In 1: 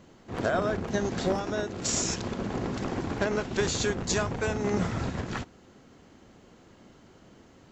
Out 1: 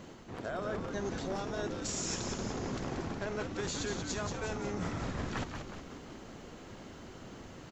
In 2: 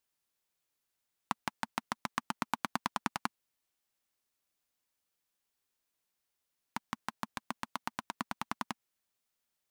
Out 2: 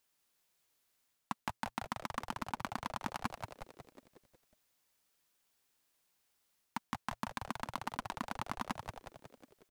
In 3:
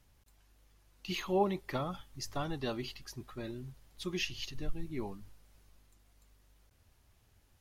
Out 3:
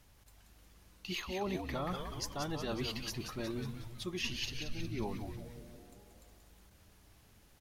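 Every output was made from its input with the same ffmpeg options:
-filter_complex "[0:a]lowshelf=f=150:g=-3.5,areverse,acompressor=threshold=0.01:ratio=10,areverse,asplit=8[s0][s1][s2][s3][s4][s5][s6][s7];[s1]adelay=182,afreqshift=-120,volume=0.501[s8];[s2]adelay=364,afreqshift=-240,volume=0.282[s9];[s3]adelay=546,afreqshift=-360,volume=0.157[s10];[s4]adelay=728,afreqshift=-480,volume=0.0881[s11];[s5]adelay=910,afreqshift=-600,volume=0.0495[s12];[s6]adelay=1092,afreqshift=-720,volume=0.0275[s13];[s7]adelay=1274,afreqshift=-840,volume=0.0155[s14];[s0][s8][s9][s10][s11][s12][s13][s14]amix=inputs=8:normalize=0,volume=1.88"

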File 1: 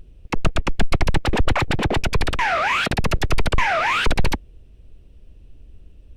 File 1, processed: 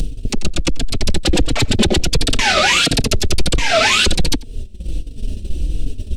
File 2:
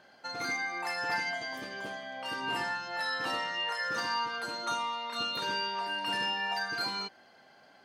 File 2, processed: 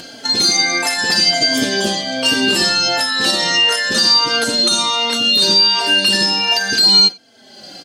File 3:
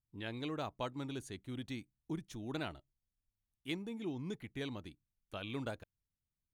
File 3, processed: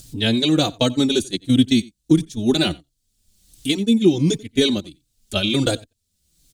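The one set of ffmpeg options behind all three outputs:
-filter_complex "[0:a]agate=range=0.1:threshold=0.00794:ratio=16:detection=peak,asplit=2[s0][s1];[s1]acompressor=mode=upward:threshold=0.0794:ratio=2.5,volume=0.794[s2];[s0][s2]amix=inputs=2:normalize=0,equalizer=f=125:t=o:w=1:g=-3,equalizer=f=250:t=o:w=1:g=4,equalizer=f=1000:t=o:w=1:g=-12,equalizer=f=2000:t=o:w=1:g=-6,equalizer=f=4000:t=o:w=1:g=7,equalizer=f=8000:t=o:w=1:g=9,acompressor=threshold=0.0708:ratio=20,aecho=1:1:89:0.0668,alimiter=level_in=8.41:limit=0.891:release=50:level=0:latency=1,asplit=2[s3][s4];[s4]adelay=3.8,afreqshift=-1.4[s5];[s3][s5]amix=inputs=2:normalize=1,volume=0.891"

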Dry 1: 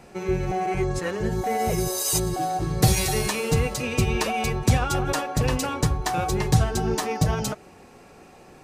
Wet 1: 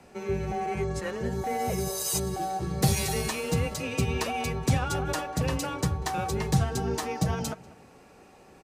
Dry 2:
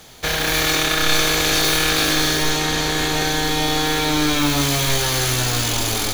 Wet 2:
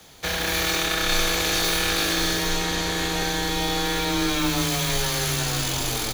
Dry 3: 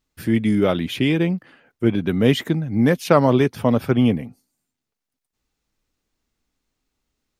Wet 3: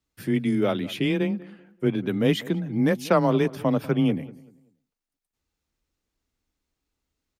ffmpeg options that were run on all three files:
-filter_complex "[0:a]afreqshift=18,asplit=2[s0][s1];[s1]adelay=192,lowpass=f=2000:p=1,volume=0.112,asplit=2[s2][s3];[s3]adelay=192,lowpass=f=2000:p=1,volume=0.31,asplit=2[s4][s5];[s5]adelay=192,lowpass=f=2000:p=1,volume=0.31[s6];[s0][s2][s4][s6]amix=inputs=4:normalize=0,volume=0.562"

